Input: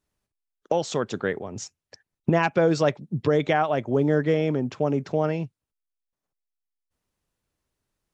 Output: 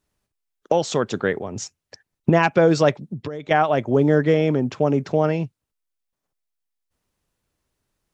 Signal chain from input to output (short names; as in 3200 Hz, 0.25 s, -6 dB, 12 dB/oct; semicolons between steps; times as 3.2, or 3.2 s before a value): 3.05–3.51 compressor 12:1, threshold -32 dBFS, peak gain reduction 16 dB; gain +4.5 dB